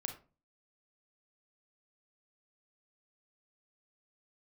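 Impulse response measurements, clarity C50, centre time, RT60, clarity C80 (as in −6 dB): 9.0 dB, 15 ms, 0.35 s, 15.5 dB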